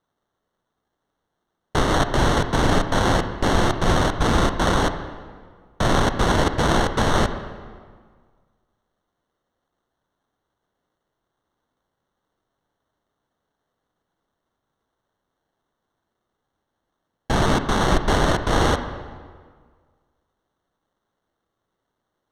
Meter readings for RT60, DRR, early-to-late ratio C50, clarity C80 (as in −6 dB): 1.7 s, 9.0 dB, 9.5 dB, 11.0 dB